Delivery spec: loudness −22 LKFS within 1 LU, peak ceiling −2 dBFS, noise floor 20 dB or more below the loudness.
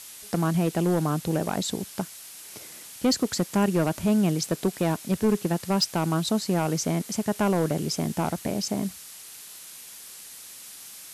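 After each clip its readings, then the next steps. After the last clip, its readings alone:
share of clipped samples 0.7%; peaks flattened at −16.0 dBFS; background noise floor −44 dBFS; target noise floor −46 dBFS; integrated loudness −26.0 LKFS; sample peak −16.0 dBFS; target loudness −22.0 LKFS
→ clipped peaks rebuilt −16 dBFS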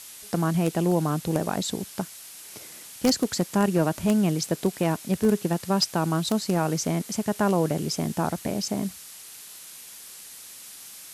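share of clipped samples 0.0%; background noise floor −44 dBFS; target noise floor −46 dBFS
→ noise reduction from a noise print 6 dB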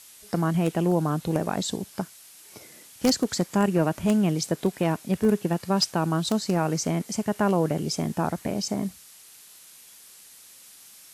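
background noise floor −50 dBFS; integrated loudness −25.5 LKFS; sample peak −7.0 dBFS; target loudness −22.0 LKFS
→ level +3.5 dB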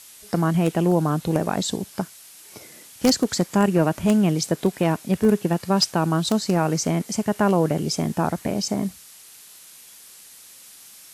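integrated loudness −22.0 LKFS; sample peak −3.5 dBFS; background noise floor −46 dBFS

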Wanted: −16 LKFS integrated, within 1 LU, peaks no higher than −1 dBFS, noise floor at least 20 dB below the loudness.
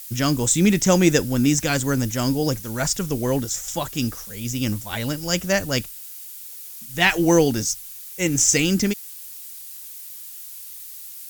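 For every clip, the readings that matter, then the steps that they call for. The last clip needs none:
background noise floor −38 dBFS; target noise floor −41 dBFS; integrated loudness −21.0 LKFS; sample peak −2.5 dBFS; target loudness −16.0 LKFS
→ broadband denoise 6 dB, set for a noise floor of −38 dBFS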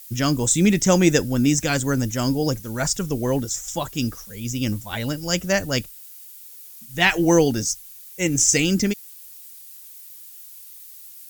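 background noise floor −43 dBFS; integrated loudness −21.0 LKFS; sample peak −2.5 dBFS; target loudness −16.0 LKFS
→ level +5 dB
brickwall limiter −1 dBFS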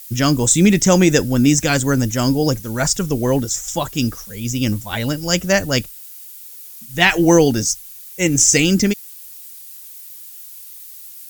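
integrated loudness −16.5 LKFS; sample peak −1.0 dBFS; background noise floor −38 dBFS

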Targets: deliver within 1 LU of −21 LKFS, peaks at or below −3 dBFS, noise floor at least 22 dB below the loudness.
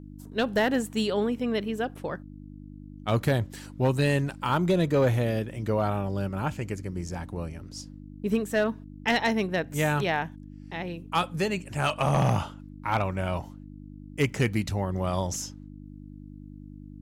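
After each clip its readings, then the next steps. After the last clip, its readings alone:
share of clipped samples 0.3%; peaks flattened at −16.0 dBFS; mains hum 50 Hz; hum harmonics up to 300 Hz; level of the hum −40 dBFS; integrated loudness −28.0 LKFS; sample peak −16.0 dBFS; target loudness −21.0 LKFS
→ clipped peaks rebuilt −16 dBFS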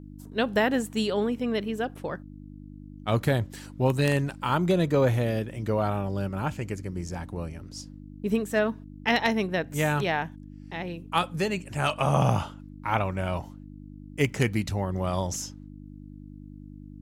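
share of clipped samples 0.0%; mains hum 50 Hz; hum harmonics up to 300 Hz; level of the hum −40 dBFS
→ hum removal 50 Hz, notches 6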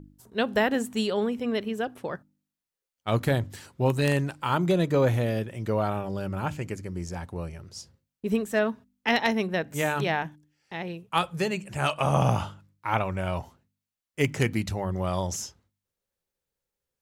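mains hum none found; integrated loudness −28.0 LKFS; sample peak −7.0 dBFS; target loudness −21.0 LKFS
→ level +7 dB
brickwall limiter −3 dBFS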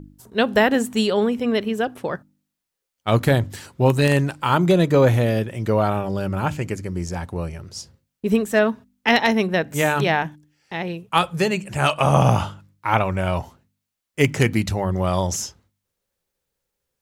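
integrated loudness −21.0 LKFS; sample peak −3.0 dBFS; background noise floor −81 dBFS

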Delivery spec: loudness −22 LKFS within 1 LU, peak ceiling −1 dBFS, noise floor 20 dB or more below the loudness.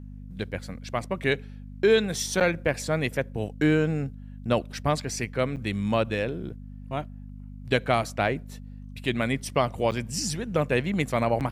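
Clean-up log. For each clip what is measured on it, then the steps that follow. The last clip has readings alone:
number of dropouts 4; longest dropout 8.2 ms; mains hum 50 Hz; hum harmonics up to 250 Hz; level of the hum −38 dBFS; integrated loudness −27.0 LKFS; sample peak −8.5 dBFS; target loudness −22.0 LKFS
→ repair the gap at 0:02.40/0:05.56/0:09.91/0:11.40, 8.2 ms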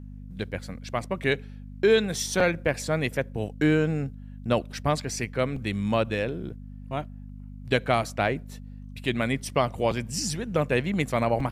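number of dropouts 0; mains hum 50 Hz; hum harmonics up to 250 Hz; level of the hum −38 dBFS
→ hum removal 50 Hz, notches 5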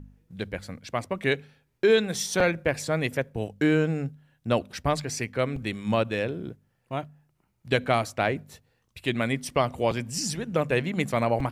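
mains hum none found; integrated loudness −27.5 LKFS; sample peak −8.0 dBFS; target loudness −22.0 LKFS
→ level +5.5 dB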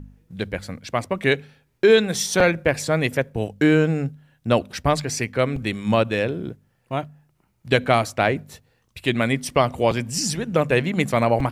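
integrated loudness −22.0 LKFS; sample peak −2.5 dBFS; background noise floor −66 dBFS

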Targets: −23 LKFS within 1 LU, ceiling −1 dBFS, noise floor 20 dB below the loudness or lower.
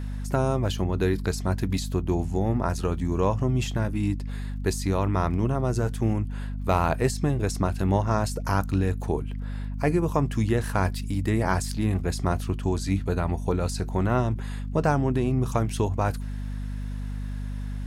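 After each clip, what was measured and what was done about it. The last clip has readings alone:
crackle rate 48 per second; mains hum 50 Hz; hum harmonics up to 250 Hz; level of the hum −29 dBFS; integrated loudness −26.5 LKFS; sample peak −9.5 dBFS; target loudness −23.0 LKFS
→ click removal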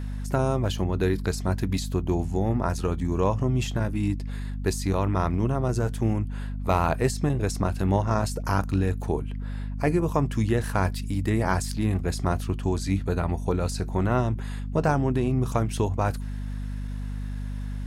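crackle rate 0.22 per second; mains hum 50 Hz; hum harmonics up to 250 Hz; level of the hum −29 dBFS
→ mains-hum notches 50/100/150/200/250 Hz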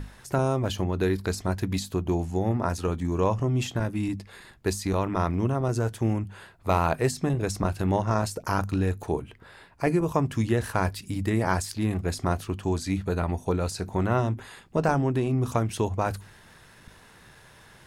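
mains hum none found; integrated loudness −27.5 LKFS; sample peak −10.0 dBFS; target loudness −23.0 LKFS
→ level +4.5 dB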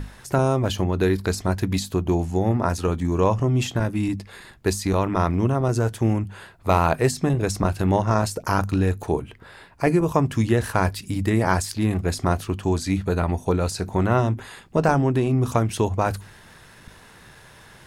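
integrated loudness −23.0 LKFS; sample peak −5.5 dBFS; background noise floor −49 dBFS

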